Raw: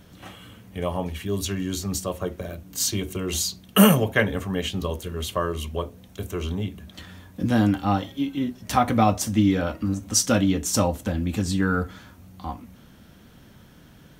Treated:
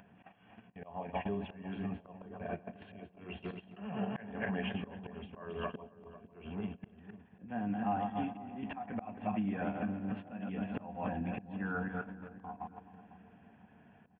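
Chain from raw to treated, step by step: backward echo that repeats 135 ms, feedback 46%, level -6 dB; steep low-pass 2.9 kHz 72 dB/octave; comb 1.2 ms, depth 50%; small resonant body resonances 210/420/700 Hz, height 12 dB, ringing for 55 ms; harmonic-percussive split harmonic -3 dB; high-pass 69 Hz 12 dB/octave; upward compressor, threshold -17 dBFS; gate -24 dBFS, range -25 dB; compression 3:1, threshold -32 dBFS, peak gain reduction 21.5 dB; bass shelf 260 Hz -11.5 dB; slow attack 325 ms; on a send: filtered feedback delay 498 ms, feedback 52%, low-pass 860 Hz, level -13.5 dB; on the sum: trim +1 dB

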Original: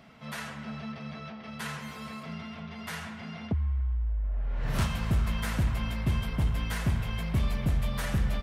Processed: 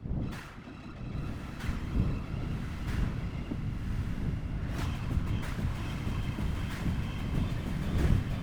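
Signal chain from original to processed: wind noise 100 Hz -28 dBFS; whisper effect; echo that smears into a reverb 1110 ms, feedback 51%, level -3 dB; sliding maximum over 3 samples; trim -7 dB

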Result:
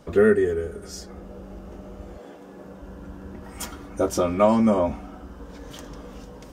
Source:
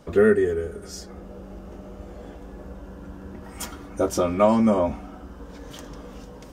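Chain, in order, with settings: 2.17–2.81 s: high-pass 300 Hz -> 110 Hz 12 dB/octave

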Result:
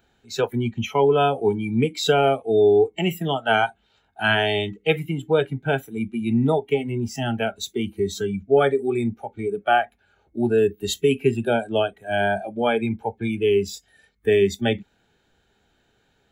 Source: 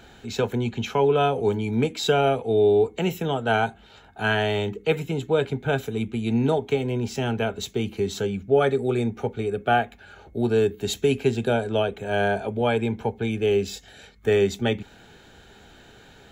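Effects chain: spectral noise reduction 18 dB; 2.93–5.10 s: peaking EQ 4.3 kHz +4 dB 2.2 oct; trim +2.5 dB

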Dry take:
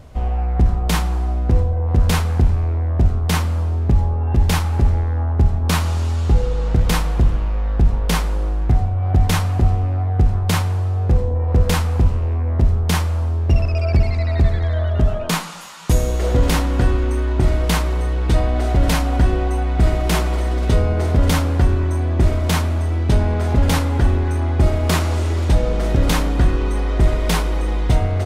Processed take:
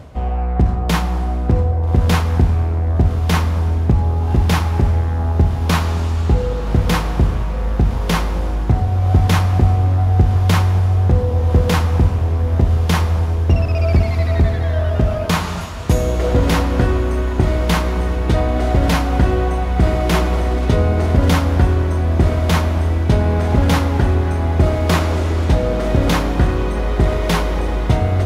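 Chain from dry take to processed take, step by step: high-pass 68 Hz; treble shelf 3.9 kHz -6.5 dB; plate-style reverb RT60 3.1 s, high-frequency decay 0.65×, DRR 13.5 dB; reverse; upward compressor, threshold -23 dBFS; reverse; dynamic bell 8.4 kHz, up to -5 dB, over -54 dBFS, Q 5.5; on a send: echo that smears into a reverb 1273 ms, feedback 75%, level -15 dB; on the sum: trim +3.5 dB

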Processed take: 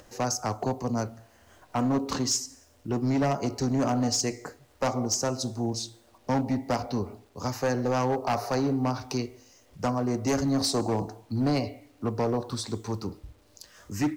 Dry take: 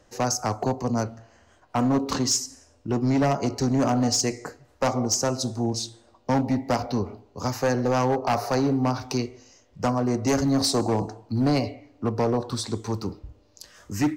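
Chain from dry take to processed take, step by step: upward compressor, threshold -42 dBFS; bit crusher 10-bit; trim -3.5 dB

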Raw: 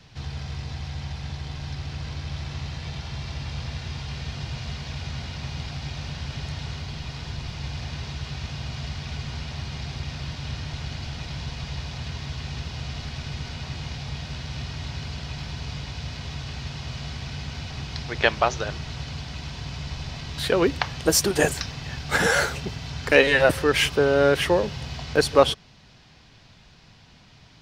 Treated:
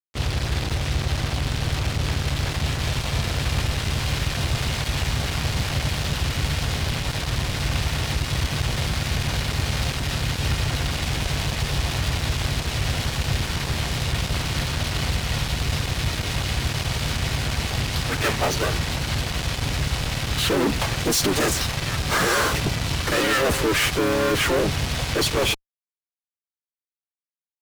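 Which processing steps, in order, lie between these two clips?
fuzz box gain 37 dB, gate -36 dBFS; harmony voices -5 st -1 dB; trim -8 dB

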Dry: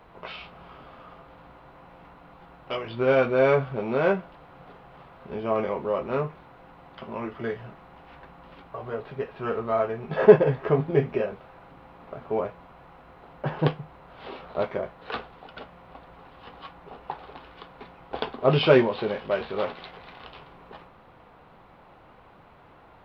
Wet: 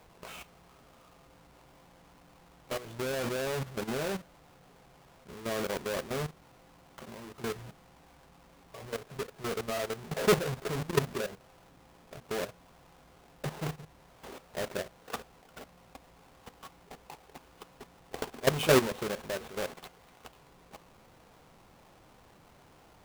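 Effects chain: square wave that keeps the level; level held to a coarse grid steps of 13 dB; trim -6.5 dB

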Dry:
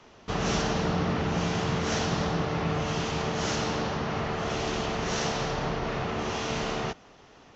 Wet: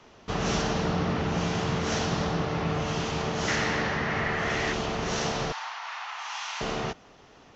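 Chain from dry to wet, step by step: 3.48–4.73 s: peaking EQ 1.9 kHz +12.5 dB 0.56 oct; 5.52–6.61 s: elliptic high-pass 860 Hz, stop band 70 dB

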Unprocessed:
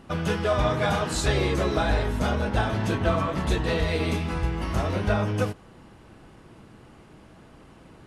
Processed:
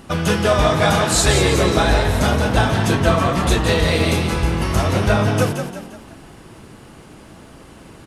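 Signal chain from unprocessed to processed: treble shelf 5 kHz +10 dB; frequency-shifting echo 174 ms, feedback 42%, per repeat +40 Hz, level -7.5 dB; trim +7 dB

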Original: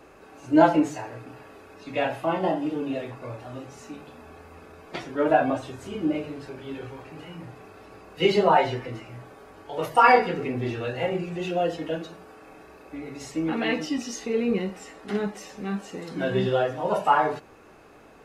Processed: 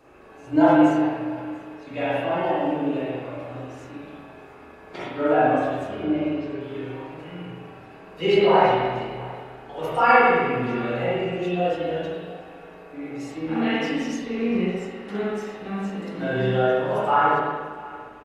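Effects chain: 6.03–6.61 s: low-pass 6.2 kHz 24 dB/octave; delay 686 ms -20.5 dB; spring tank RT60 1.4 s, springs 39/56 ms, chirp 70 ms, DRR -8 dB; trim -6 dB

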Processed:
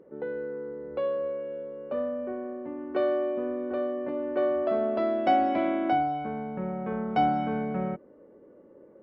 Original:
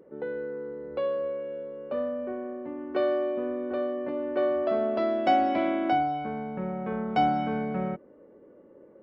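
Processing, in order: treble shelf 4.1 kHz -9 dB

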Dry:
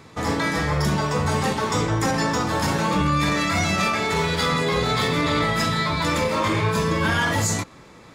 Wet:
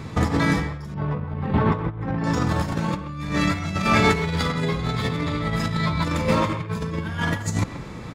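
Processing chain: tone controls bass +10 dB, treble -3 dB; compressor with a negative ratio -22 dBFS, ratio -0.5; 0.94–2.24 s: distance through air 490 m; speakerphone echo 130 ms, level -10 dB

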